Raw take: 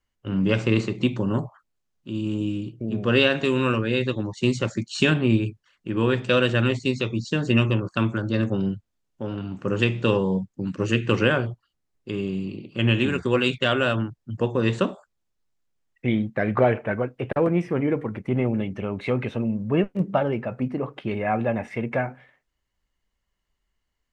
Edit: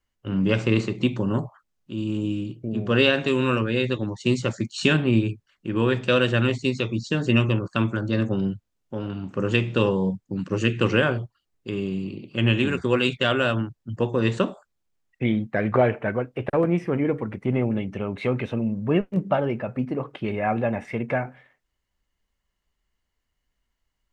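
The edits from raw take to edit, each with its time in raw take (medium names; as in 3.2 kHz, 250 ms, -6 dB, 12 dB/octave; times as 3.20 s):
shrink pauses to 50%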